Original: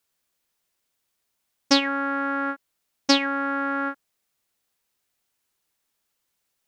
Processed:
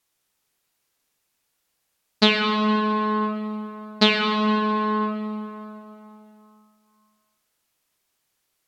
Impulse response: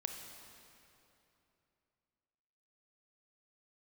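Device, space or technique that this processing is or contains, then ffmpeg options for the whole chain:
slowed and reverbed: -filter_complex "[0:a]asetrate=33957,aresample=44100[a];[1:a]atrim=start_sample=2205[b];[a][b]afir=irnorm=-1:irlink=0,volume=3.5dB"

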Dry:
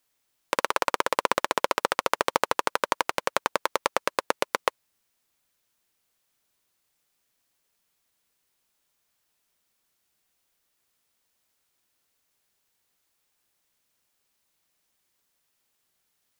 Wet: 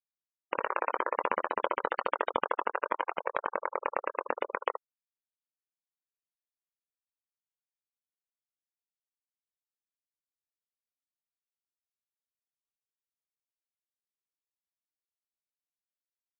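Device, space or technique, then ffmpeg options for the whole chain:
slapback doubling: -filter_complex "[0:a]asplit=3[a][b][c];[b]adelay=23,volume=-6dB[d];[c]adelay=76,volume=-8.5dB[e];[a][d][e]amix=inputs=3:normalize=0,afftfilt=real='re*gte(hypot(re,im),0.0794)':imag='im*gte(hypot(re,im),0.0794)':win_size=1024:overlap=0.75,volume=-6dB"

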